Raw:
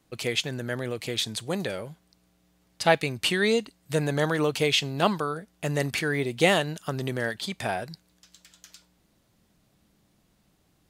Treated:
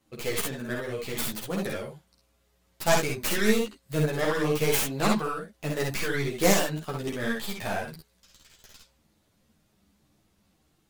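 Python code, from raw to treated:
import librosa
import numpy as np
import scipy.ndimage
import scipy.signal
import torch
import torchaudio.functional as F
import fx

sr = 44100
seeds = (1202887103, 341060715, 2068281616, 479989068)

y = fx.tracing_dist(x, sr, depth_ms=0.48)
y = fx.room_early_taps(y, sr, ms=(52, 65), db=(-4.5, -5.5))
y = fx.ensemble(y, sr)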